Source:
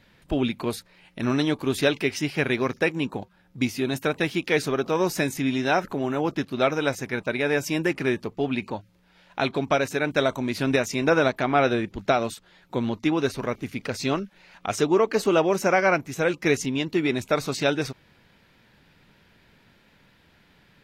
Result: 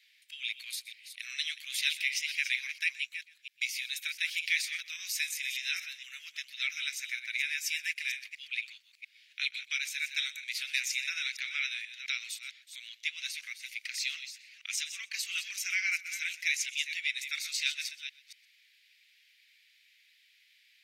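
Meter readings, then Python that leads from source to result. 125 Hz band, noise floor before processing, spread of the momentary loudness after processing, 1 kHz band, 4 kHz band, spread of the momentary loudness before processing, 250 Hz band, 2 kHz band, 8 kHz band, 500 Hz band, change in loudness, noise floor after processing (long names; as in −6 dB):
below −40 dB, −60 dBFS, 12 LU, −32.5 dB, 0.0 dB, 9 LU, below −40 dB, −4.0 dB, 0.0 dB, below −40 dB, −8.5 dB, −65 dBFS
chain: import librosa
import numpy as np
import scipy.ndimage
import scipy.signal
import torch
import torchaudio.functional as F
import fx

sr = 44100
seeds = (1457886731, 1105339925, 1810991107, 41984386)

y = fx.reverse_delay(x, sr, ms=232, wet_db=-10)
y = scipy.signal.sosfilt(scipy.signal.ellip(4, 1.0, 60, 2100.0, 'highpass', fs=sr, output='sos'), y)
y = y + 10.0 ** (-19.0 / 20.0) * np.pad(y, (int(124 * sr / 1000.0), 0))[:len(y)]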